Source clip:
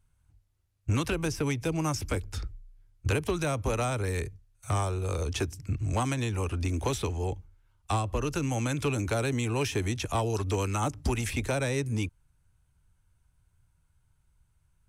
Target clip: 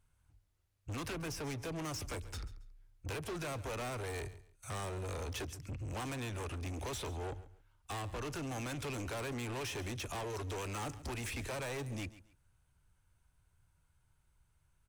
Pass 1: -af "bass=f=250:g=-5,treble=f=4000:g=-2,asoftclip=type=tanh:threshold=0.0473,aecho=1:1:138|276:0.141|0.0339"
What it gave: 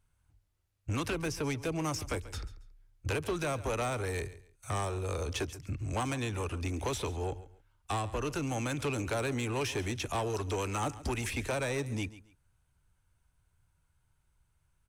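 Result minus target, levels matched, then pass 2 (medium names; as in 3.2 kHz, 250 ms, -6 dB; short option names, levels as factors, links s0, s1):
saturation: distortion -9 dB
-af "bass=f=250:g=-5,treble=f=4000:g=-2,asoftclip=type=tanh:threshold=0.0126,aecho=1:1:138|276:0.141|0.0339"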